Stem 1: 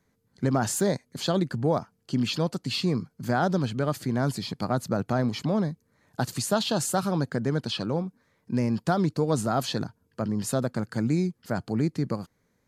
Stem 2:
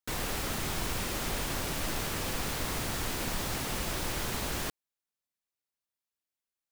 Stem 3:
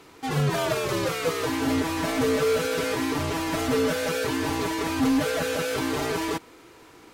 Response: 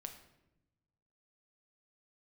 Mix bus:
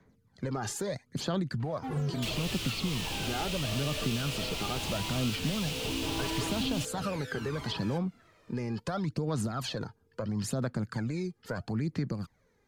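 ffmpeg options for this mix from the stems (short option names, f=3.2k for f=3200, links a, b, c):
-filter_complex "[0:a]alimiter=limit=-21.5dB:level=0:latency=1:release=70,aphaser=in_gain=1:out_gain=1:delay=2.5:decay=0.6:speed=0.75:type=sinusoidal,volume=0.5dB[a];[1:a]highshelf=f=2.2k:t=q:w=3:g=8,adelay=2150,volume=-3dB[b];[2:a]aphaser=in_gain=1:out_gain=1:delay=1.7:decay=0.74:speed=0.21:type=sinusoidal,adelay=1600,volume=-14.5dB[c];[a][b][c]amix=inputs=3:normalize=0,highshelf=f=7k:g=-11,acrossover=split=140|1300[d][e][f];[d]acompressor=threshold=-36dB:ratio=4[g];[e]acompressor=threshold=-33dB:ratio=4[h];[f]acompressor=threshold=-35dB:ratio=4[i];[g][h][i]amix=inputs=3:normalize=0"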